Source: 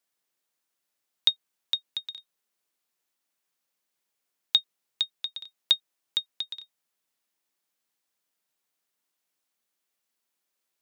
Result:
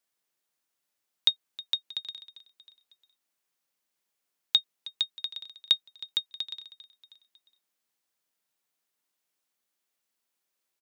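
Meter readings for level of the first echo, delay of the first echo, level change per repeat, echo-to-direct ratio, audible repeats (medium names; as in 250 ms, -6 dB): -18.5 dB, 316 ms, -4.5 dB, -17.0 dB, 3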